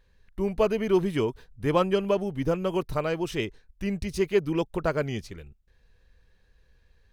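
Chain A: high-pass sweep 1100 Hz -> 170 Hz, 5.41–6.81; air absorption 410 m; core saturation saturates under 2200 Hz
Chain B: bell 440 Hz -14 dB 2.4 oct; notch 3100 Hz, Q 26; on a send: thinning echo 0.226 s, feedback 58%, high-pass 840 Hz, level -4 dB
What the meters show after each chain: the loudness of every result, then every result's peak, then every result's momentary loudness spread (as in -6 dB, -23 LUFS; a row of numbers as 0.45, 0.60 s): -35.0, -36.0 LUFS; -11.0, -19.0 dBFS; 15, 10 LU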